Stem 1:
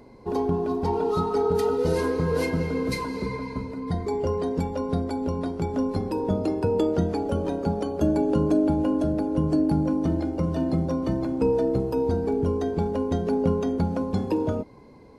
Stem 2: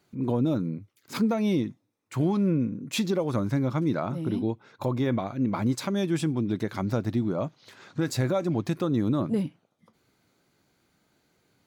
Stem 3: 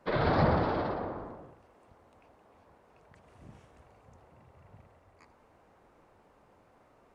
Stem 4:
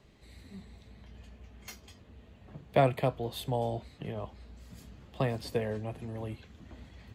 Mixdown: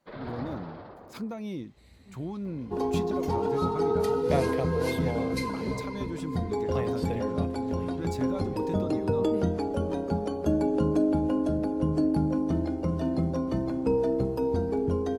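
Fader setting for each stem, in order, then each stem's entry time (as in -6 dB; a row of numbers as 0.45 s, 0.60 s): -3.0 dB, -11.0 dB, -13.0 dB, -4.0 dB; 2.45 s, 0.00 s, 0.00 s, 1.55 s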